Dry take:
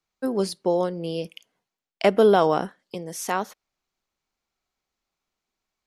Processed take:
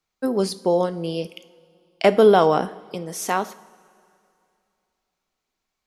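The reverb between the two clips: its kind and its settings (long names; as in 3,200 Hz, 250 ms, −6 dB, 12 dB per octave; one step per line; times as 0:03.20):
coupled-rooms reverb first 0.53 s, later 2.6 s, from −15 dB, DRR 12.5 dB
level +2.5 dB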